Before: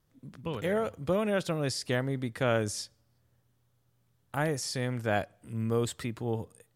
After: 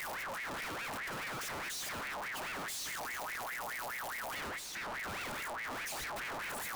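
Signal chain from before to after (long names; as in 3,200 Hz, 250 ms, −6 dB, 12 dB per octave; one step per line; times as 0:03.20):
sign of each sample alone
0:04.49–0:04.94: high-shelf EQ 4,200 Hz −6.5 dB
ring modulator whose carrier an LFO sweeps 1,400 Hz, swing 50%, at 4.8 Hz
level −5 dB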